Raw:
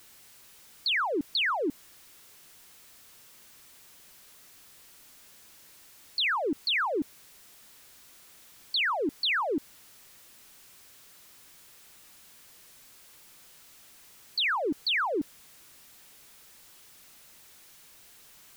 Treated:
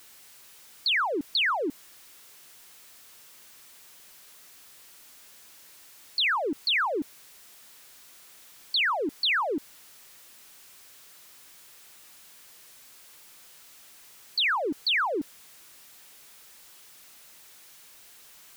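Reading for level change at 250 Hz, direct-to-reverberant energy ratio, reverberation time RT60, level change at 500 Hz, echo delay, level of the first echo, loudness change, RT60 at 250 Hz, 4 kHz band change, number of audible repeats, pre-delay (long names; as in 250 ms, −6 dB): −1.0 dB, no reverb audible, no reverb audible, +0.5 dB, no echo audible, no echo audible, +2.0 dB, no reverb audible, +2.5 dB, no echo audible, no reverb audible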